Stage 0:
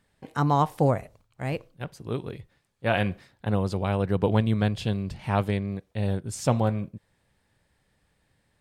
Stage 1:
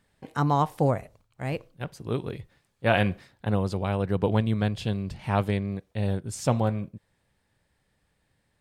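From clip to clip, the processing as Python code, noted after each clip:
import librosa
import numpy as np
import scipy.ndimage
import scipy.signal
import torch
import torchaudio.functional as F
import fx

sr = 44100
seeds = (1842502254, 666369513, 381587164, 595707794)

y = fx.rider(x, sr, range_db=5, speed_s=2.0)
y = F.gain(torch.from_numpy(y), -1.0).numpy()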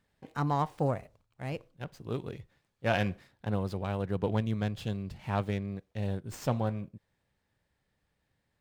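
y = fx.running_max(x, sr, window=3)
y = F.gain(torch.from_numpy(y), -6.0).numpy()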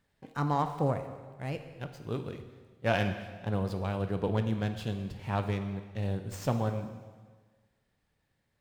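y = fx.rev_plate(x, sr, seeds[0], rt60_s=1.5, hf_ratio=0.95, predelay_ms=0, drr_db=7.5)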